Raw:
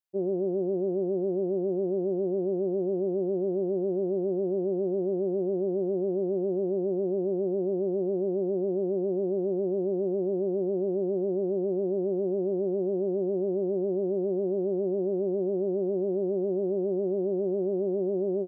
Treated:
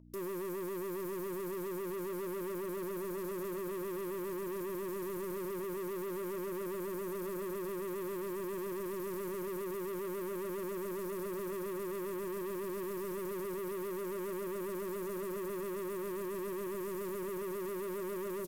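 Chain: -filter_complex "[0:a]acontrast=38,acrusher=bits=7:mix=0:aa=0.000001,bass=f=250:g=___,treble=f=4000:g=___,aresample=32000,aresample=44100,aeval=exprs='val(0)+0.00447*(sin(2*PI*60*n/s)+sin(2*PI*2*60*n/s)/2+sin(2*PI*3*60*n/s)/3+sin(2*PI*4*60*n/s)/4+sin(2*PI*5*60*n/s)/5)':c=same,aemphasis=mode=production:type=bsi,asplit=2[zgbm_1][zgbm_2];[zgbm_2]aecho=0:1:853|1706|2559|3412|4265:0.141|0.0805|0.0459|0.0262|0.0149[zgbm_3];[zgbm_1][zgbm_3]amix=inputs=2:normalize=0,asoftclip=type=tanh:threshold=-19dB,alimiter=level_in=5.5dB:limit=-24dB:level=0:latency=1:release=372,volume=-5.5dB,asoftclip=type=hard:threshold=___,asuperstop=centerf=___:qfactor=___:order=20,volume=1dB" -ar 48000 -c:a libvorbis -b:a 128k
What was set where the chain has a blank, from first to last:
12, 4, -38.5dB, 780, 4.1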